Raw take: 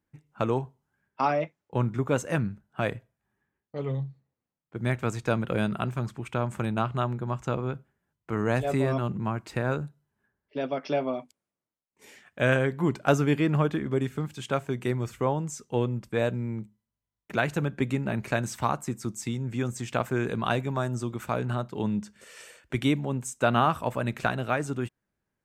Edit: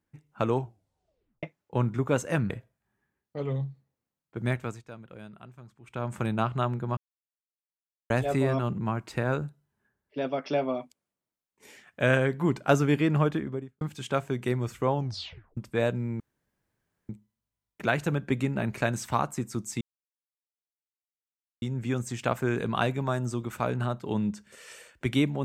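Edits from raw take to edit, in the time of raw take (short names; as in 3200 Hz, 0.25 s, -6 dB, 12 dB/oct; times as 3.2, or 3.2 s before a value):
0.59 tape stop 0.84 s
2.5–2.89 cut
4.85–6.58 dip -18.5 dB, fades 0.38 s
7.36–8.49 mute
13.67–14.2 studio fade out
15.33 tape stop 0.63 s
16.59 insert room tone 0.89 s
19.31 insert silence 1.81 s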